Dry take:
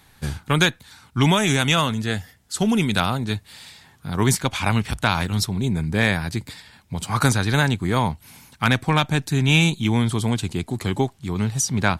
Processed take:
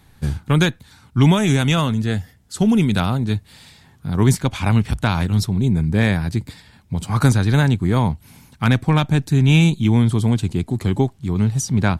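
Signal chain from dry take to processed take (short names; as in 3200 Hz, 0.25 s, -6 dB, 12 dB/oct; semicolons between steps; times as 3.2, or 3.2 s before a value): low shelf 460 Hz +10 dB; gain -3.5 dB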